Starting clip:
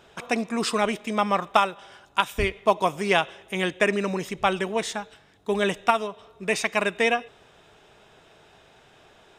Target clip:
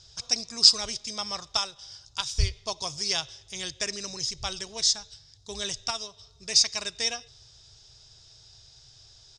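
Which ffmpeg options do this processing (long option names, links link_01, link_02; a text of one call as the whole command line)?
ffmpeg -i in.wav -af "firequalizer=gain_entry='entry(120,0);entry(180,-23);entry(2600,-18);entry(4900,13);entry(13000,-30)':delay=0.05:min_phase=1,volume=6.5dB" out.wav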